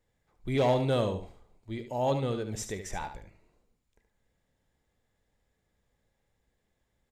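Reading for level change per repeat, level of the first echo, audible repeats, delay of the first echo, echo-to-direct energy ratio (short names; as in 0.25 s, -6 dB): -13.5 dB, -9.0 dB, 2, 73 ms, -9.0 dB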